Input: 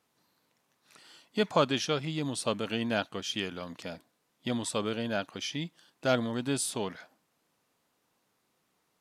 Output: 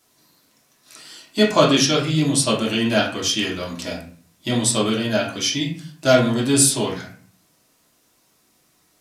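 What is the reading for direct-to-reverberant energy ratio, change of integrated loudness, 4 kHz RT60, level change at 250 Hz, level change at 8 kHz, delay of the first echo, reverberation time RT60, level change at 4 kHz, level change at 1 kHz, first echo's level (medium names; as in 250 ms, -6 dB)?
-5.5 dB, +13.0 dB, 0.30 s, +13.0 dB, +17.5 dB, no echo, 0.45 s, +13.5 dB, +9.5 dB, no echo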